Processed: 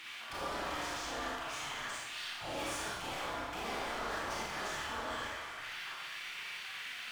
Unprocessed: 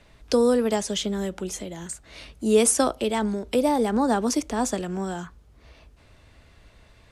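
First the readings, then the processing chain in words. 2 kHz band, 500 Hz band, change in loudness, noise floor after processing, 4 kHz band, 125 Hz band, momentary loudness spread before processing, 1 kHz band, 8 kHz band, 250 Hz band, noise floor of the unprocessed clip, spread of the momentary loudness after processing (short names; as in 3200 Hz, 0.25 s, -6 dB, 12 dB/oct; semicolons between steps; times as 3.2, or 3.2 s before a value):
-0.5 dB, -20.0 dB, -15.0 dB, -46 dBFS, -5.5 dB, -16.0 dB, 15 LU, -9.0 dB, -17.0 dB, -24.0 dB, -55 dBFS, 4 LU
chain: per-bin compression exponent 0.6; Bessel low-pass 1500 Hz, order 2; spectral gate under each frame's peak -20 dB weak; low shelf 140 Hz -6 dB; in parallel at +1 dB: compressor, threshold -51 dBFS, peak gain reduction 19.5 dB; on the sum: sample leveller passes 2; reverse; upward compressor, threshold -32 dBFS; reverse; soft clip -34.5 dBFS, distortion -8 dB; resonator 240 Hz, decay 0.47 s, harmonics odd; Schroeder reverb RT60 1.1 s, combs from 27 ms, DRR -5 dB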